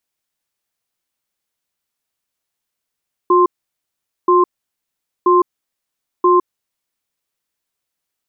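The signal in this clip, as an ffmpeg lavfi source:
ffmpeg -f lavfi -i "aevalsrc='0.282*(sin(2*PI*359*t)+sin(2*PI*1050*t))*clip(min(mod(t,0.98),0.16-mod(t,0.98))/0.005,0,1)':duration=3.4:sample_rate=44100" out.wav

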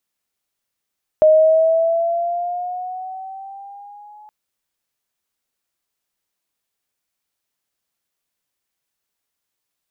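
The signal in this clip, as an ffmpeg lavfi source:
ffmpeg -f lavfi -i "aevalsrc='pow(10,(-7-33*t/3.07)/20)*sin(2*PI*619*3.07/(5.5*log(2)/12)*(exp(5.5*log(2)/12*t/3.07)-1))':duration=3.07:sample_rate=44100" out.wav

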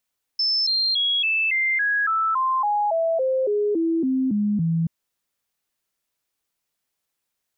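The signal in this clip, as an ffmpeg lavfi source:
ffmpeg -f lavfi -i "aevalsrc='0.119*clip(min(mod(t,0.28),0.28-mod(t,0.28))/0.005,0,1)*sin(2*PI*5270*pow(2,-floor(t/0.28)/3)*mod(t,0.28))':duration=4.48:sample_rate=44100" out.wav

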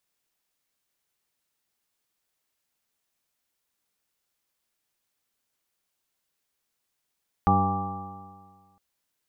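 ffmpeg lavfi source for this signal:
ffmpeg -f lavfi -i "aevalsrc='0.0708*pow(10,-3*t/1.71)*sin(2*PI*94.7*t)+0.0794*pow(10,-3*t/1.71)*sin(2*PI*190.03*t)+0.0316*pow(10,-3*t/1.71)*sin(2*PI*286.6*t)+0.0224*pow(10,-3*t/1.71)*sin(2*PI*385*t)+0.0178*pow(10,-3*t/1.71)*sin(2*PI*485.83*t)+0.00708*pow(10,-3*t/1.71)*sin(2*PI*589.65*t)+0.0141*pow(10,-3*t/1.71)*sin(2*PI*696.98*t)+0.112*pow(10,-3*t/1.71)*sin(2*PI*808.32*t)+0.0126*pow(10,-3*t/1.71)*sin(2*PI*924.15*t)+0.00708*pow(10,-3*t/1.71)*sin(2*PI*1044.89*t)+0.0708*pow(10,-3*t/1.71)*sin(2*PI*1170.94*t)':duration=1.31:sample_rate=44100" out.wav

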